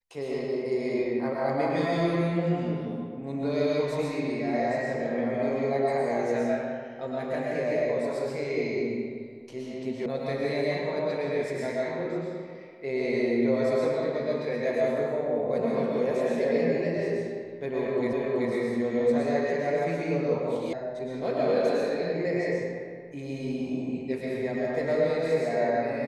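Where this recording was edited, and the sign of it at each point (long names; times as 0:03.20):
0:10.06: cut off before it has died away
0:18.13: the same again, the last 0.38 s
0:20.73: cut off before it has died away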